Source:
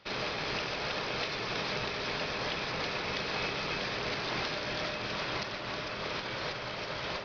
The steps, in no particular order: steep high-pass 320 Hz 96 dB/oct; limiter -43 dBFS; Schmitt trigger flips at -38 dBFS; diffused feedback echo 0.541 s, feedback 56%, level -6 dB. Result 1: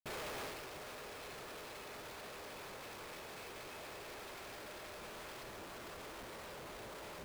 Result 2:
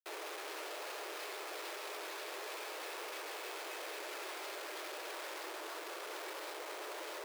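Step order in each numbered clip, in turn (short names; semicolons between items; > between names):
steep high-pass > Schmitt trigger > diffused feedback echo > limiter; diffused feedback echo > Schmitt trigger > limiter > steep high-pass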